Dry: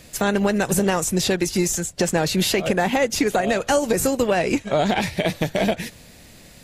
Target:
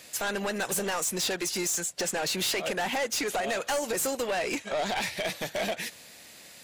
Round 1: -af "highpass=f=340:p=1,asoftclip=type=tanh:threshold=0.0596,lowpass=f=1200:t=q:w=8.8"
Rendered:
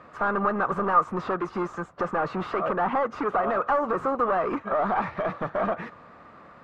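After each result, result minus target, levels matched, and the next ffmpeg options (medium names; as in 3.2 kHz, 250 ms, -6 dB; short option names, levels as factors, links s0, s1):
1 kHz band +7.0 dB; 250 Hz band +2.0 dB
-af "highpass=f=340:p=1,asoftclip=type=tanh:threshold=0.0596"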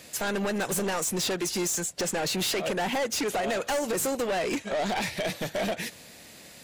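250 Hz band +3.5 dB
-af "highpass=f=850:p=1,asoftclip=type=tanh:threshold=0.0596"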